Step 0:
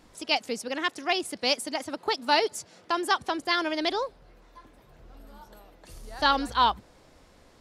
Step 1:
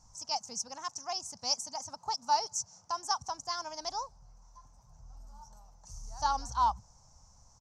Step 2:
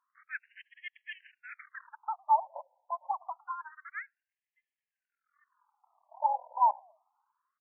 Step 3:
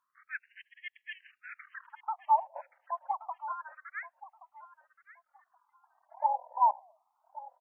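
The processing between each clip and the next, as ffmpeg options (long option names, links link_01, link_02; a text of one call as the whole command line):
ffmpeg -i in.wav -af "firequalizer=gain_entry='entry(120,0);entry(330,-27);entry(870,-2);entry(1800,-23);entry(3600,-22);entry(5900,11);entry(10000,-16)':delay=0.05:min_phase=1" out.wav
ffmpeg -i in.wav -filter_complex "[0:a]asplit=4[link_01][link_02][link_03][link_04];[link_02]adelay=105,afreqshift=-110,volume=-22dB[link_05];[link_03]adelay=210,afreqshift=-220,volume=-28.4dB[link_06];[link_04]adelay=315,afreqshift=-330,volume=-34.8dB[link_07];[link_01][link_05][link_06][link_07]amix=inputs=4:normalize=0,aeval=exprs='0.168*(cos(1*acos(clip(val(0)/0.168,-1,1)))-cos(1*PI/2))+0.0668*(cos(5*acos(clip(val(0)/0.168,-1,1)))-cos(5*PI/2))+0.0596*(cos(7*acos(clip(val(0)/0.168,-1,1)))-cos(7*PI/2))+0.0473*(cos(8*acos(clip(val(0)/0.168,-1,1)))-cos(8*PI/2))':channel_layout=same,afftfilt=real='re*between(b*sr/1024,720*pow(2400/720,0.5+0.5*sin(2*PI*0.27*pts/sr))/1.41,720*pow(2400/720,0.5+0.5*sin(2*PI*0.27*pts/sr))*1.41)':imag='im*between(b*sr/1024,720*pow(2400/720,0.5+0.5*sin(2*PI*0.27*pts/sr))/1.41,720*pow(2400/720,0.5+0.5*sin(2*PI*0.27*pts/sr))*1.41)':win_size=1024:overlap=0.75" out.wav
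ffmpeg -i in.wav -af "aecho=1:1:1125|2250:0.15|0.0329" out.wav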